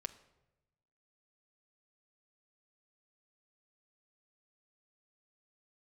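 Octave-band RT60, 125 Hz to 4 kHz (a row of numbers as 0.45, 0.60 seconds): 1.6, 1.2, 1.1, 0.85, 0.75, 0.65 seconds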